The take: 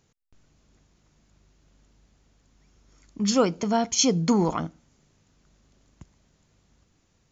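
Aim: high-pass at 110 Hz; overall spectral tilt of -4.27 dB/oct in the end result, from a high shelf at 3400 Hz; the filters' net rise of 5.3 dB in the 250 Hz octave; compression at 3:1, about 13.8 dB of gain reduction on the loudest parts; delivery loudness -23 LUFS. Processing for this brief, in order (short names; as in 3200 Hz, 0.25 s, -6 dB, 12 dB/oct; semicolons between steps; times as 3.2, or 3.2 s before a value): HPF 110 Hz; bell 250 Hz +6.5 dB; high shelf 3400 Hz +4 dB; compressor 3:1, threshold -31 dBFS; gain +8.5 dB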